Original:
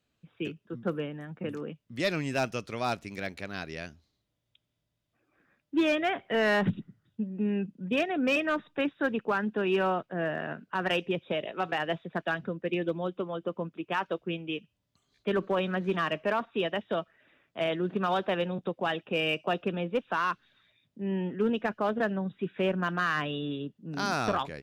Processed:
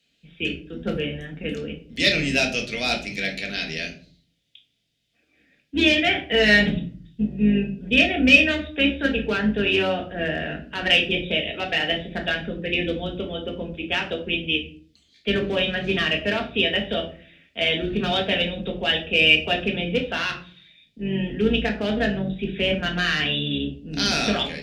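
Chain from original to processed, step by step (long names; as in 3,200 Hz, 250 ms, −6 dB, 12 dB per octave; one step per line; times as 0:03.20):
sub-octave generator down 2 octaves, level 0 dB
meter weighting curve D
gain on a spectral selection 0:05.32–0:05.54, 830–1,700 Hz −8 dB
parametric band 1,100 Hz −14.5 dB 0.76 octaves
convolution reverb RT60 0.45 s, pre-delay 4 ms, DRR 1 dB
level +3.5 dB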